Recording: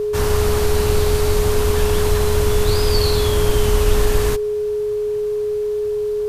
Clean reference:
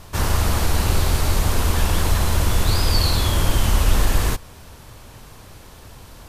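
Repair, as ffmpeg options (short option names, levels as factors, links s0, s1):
-af "bandreject=f=420:w=30"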